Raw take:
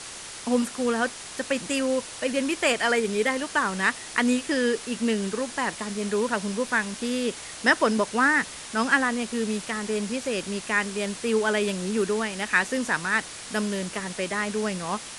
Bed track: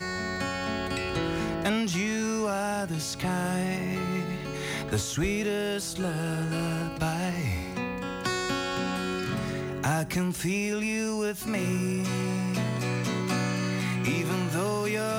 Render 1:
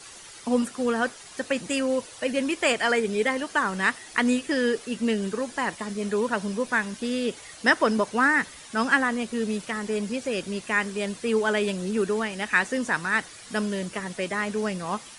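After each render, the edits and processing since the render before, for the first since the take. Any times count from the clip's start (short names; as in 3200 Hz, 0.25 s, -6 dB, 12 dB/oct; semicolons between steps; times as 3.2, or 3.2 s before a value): denoiser 10 dB, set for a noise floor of -40 dBFS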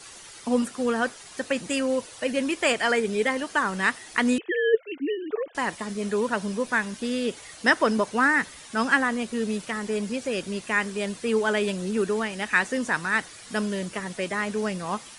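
4.38–5.55 sine-wave speech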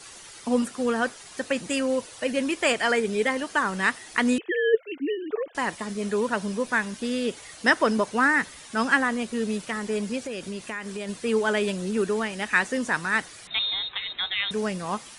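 10.2–11.09 compressor 5:1, threshold -29 dBFS; 13.47–14.51 inverted band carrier 3900 Hz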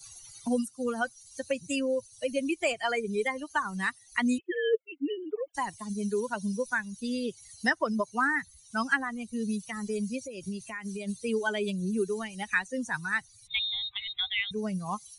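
per-bin expansion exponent 2; three-band squash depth 70%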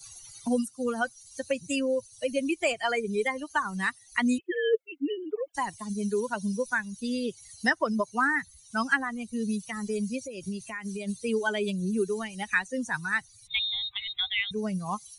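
gain +1.5 dB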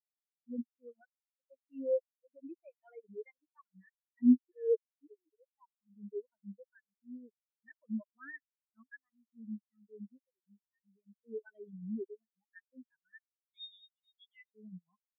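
transient shaper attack -8 dB, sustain -12 dB; spectral expander 4:1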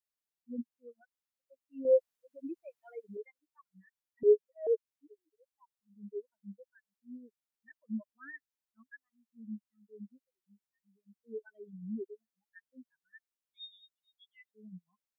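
1.85–3.17 gain +6.5 dB; 4.23–4.67 frequency shift +170 Hz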